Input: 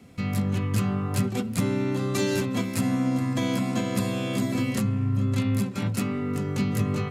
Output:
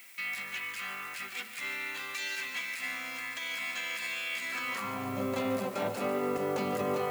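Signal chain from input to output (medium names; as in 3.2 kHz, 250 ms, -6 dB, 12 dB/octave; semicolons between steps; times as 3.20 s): high-pass sweep 2.1 kHz -> 610 Hz, 4.41–5.14 s; peak limiter -26 dBFS, peak gain reduction 11 dB; reverse; upward compressor, threshold -35 dBFS; reverse; added noise violet -47 dBFS; tilt EQ -2.5 dB/octave; on a send: thinning echo 144 ms, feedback 75%, level -12 dB; on the sum: trim +2.5 dB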